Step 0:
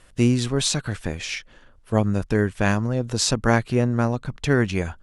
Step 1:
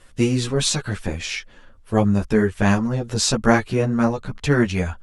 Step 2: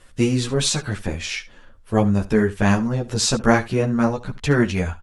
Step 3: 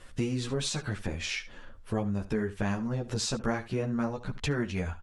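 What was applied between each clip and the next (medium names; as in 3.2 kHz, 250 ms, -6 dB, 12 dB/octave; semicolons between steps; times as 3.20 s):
three-phase chorus; trim +5 dB
delay 71 ms -18 dB
compression 3:1, threshold -31 dBFS, peak gain reduction 16 dB; treble shelf 8.8 kHz -6.5 dB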